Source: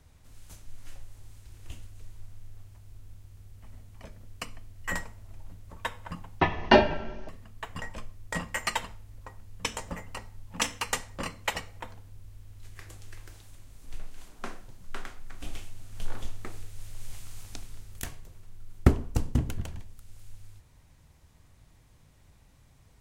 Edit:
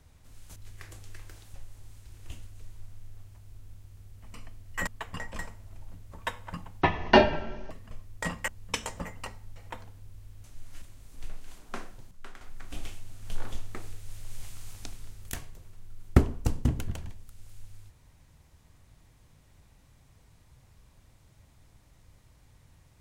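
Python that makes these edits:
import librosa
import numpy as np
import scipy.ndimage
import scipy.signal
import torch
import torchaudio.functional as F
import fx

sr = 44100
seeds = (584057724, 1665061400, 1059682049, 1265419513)

y = fx.edit(x, sr, fx.swap(start_s=0.56, length_s=0.38, other_s=12.54, other_length_s=0.98),
    fx.cut(start_s=3.74, length_s=0.7),
    fx.move(start_s=7.49, length_s=0.52, to_s=4.97),
    fx.cut(start_s=8.58, length_s=0.81),
    fx.cut(start_s=10.47, length_s=1.19),
    fx.clip_gain(start_s=14.81, length_s=0.3, db=-8.0), tone=tone)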